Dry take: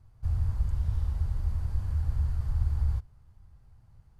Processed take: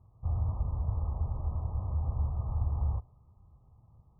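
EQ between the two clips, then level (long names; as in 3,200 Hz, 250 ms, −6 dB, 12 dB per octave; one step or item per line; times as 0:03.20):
dynamic equaliser 680 Hz, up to +6 dB, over −58 dBFS, Q 1.2
high-pass filter 110 Hz 6 dB per octave
linear-phase brick-wall low-pass 1,300 Hz
+2.5 dB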